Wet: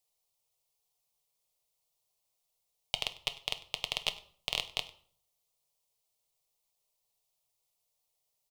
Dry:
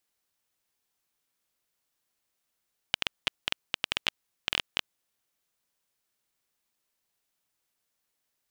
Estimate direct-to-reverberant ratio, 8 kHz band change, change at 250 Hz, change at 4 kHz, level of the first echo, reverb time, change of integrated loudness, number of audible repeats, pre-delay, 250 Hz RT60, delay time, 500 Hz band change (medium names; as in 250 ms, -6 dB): 9.0 dB, 0.0 dB, -9.5 dB, -2.5 dB, -21.0 dB, 0.55 s, -3.5 dB, 1, 6 ms, 0.65 s, 99 ms, -0.5 dB